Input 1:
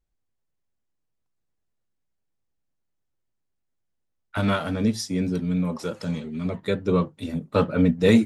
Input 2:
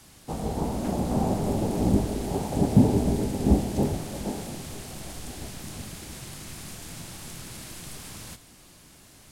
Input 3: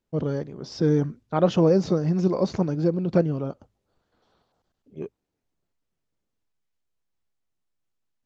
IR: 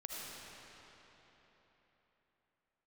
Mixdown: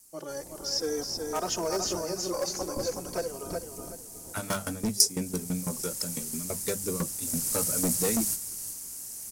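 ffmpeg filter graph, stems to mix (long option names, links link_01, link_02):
-filter_complex "[0:a]aeval=exprs='val(0)*pow(10,-19*if(lt(mod(6*n/s,1),2*abs(6)/1000),1-mod(6*n/s,1)/(2*abs(6)/1000),(mod(6*n/s,1)-2*abs(6)/1000)/(1-2*abs(6)/1000))/20)':channel_layout=same,volume=-1.5dB[link_01];[1:a]aeval=exprs='val(0)*sin(2*PI*110*n/s)':channel_layout=same,volume=-1.5dB,afade=type=in:start_time=5.16:duration=0.79:silence=0.354813,afade=type=in:start_time=7.2:duration=0.3:silence=0.446684,asplit=2[link_02][link_03];[link_03]volume=-10.5dB[link_04];[2:a]highpass=590,asplit=2[link_05][link_06];[link_06]adelay=2.9,afreqshift=-0.53[link_07];[link_05][link_07]amix=inputs=2:normalize=1,volume=0dB,asplit=2[link_08][link_09];[link_09]volume=-4.5dB[link_10];[link_04][link_10]amix=inputs=2:normalize=0,aecho=0:1:372|744|1116|1488:1|0.25|0.0625|0.0156[link_11];[link_01][link_02][link_08][link_11]amix=inputs=4:normalize=0,bandreject=frequency=50:width_type=h:width=6,bandreject=frequency=100:width_type=h:width=6,bandreject=frequency=150:width_type=h:width=6,bandreject=frequency=200:width_type=h:width=6,volume=24dB,asoftclip=hard,volume=-24dB,aexciter=amount=11:drive=3.6:freq=5200"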